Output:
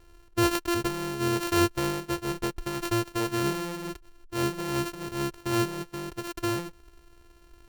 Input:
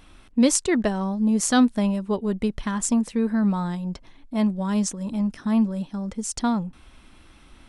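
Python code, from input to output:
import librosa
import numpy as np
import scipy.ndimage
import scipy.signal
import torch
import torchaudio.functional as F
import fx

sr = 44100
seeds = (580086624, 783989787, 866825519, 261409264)

y = np.r_[np.sort(x[:len(x) // 128 * 128].reshape(-1, 128), axis=1).ravel(), x[len(x) // 128 * 128:]]
y = y + 0.47 * np.pad(y, (int(2.2 * sr / 1000.0), 0))[:len(y)]
y = F.gain(torch.from_numpy(y), -6.5).numpy()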